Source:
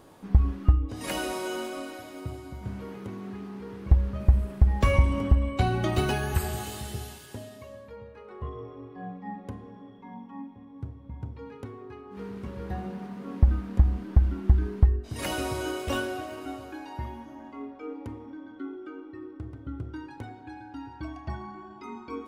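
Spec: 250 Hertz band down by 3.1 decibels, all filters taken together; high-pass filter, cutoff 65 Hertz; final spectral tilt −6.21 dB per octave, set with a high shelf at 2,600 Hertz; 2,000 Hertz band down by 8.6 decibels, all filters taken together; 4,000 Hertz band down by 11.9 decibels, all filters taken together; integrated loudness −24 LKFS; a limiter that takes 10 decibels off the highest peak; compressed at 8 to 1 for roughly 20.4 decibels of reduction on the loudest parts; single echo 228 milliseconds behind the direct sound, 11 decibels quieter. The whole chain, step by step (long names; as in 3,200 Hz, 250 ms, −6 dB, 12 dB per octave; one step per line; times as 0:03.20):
high-pass filter 65 Hz
parametric band 250 Hz −4 dB
parametric band 2,000 Hz −7.5 dB
high-shelf EQ 2,600 Hz −8 dB
parametric band 4,000 Hz −6.5 dB
downward compressor 8 to 1, threshold −38 dBFS
brickwall limiter −34.5 dBFS
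single-tap delay 228 ms −11 dB
level +21 dB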